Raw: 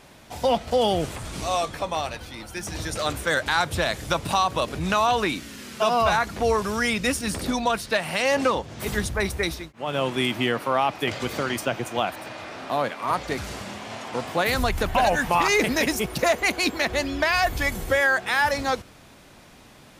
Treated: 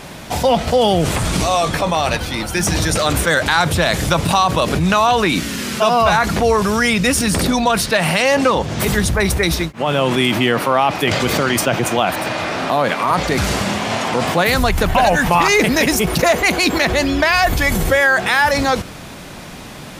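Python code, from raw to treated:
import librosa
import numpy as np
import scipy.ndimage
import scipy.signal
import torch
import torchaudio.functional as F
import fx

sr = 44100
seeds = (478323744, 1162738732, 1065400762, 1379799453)

p1 = fx.peak_eq(x, sr, hz=170.0, db=5.5, octaves=0.35)
p2 = fx.over_compress(p1, sr, threshold_db=-32.0, ratio=-1.0)
p3 = p1 + (p2 * 10.0 ** (-0.5 / 20.0))
y = p3 * 10.0 ** (6.0 / 20.0)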